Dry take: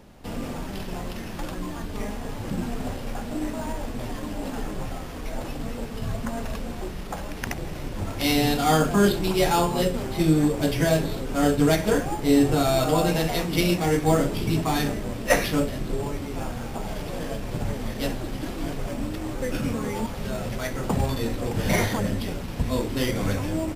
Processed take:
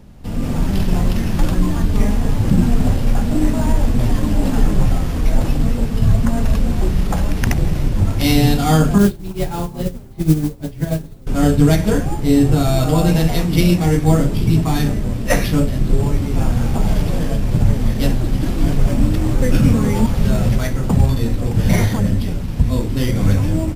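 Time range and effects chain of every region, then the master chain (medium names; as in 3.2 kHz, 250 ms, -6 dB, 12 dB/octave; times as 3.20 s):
8.98–11.27 s: treble shelf 3 kHz -9 dB + modulation noise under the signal 15 dB + upward expansion 2.5:1, over -29 dBFS
whole clip: tone controls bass +12 dB, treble +2 dB; level rider; trim -1 dB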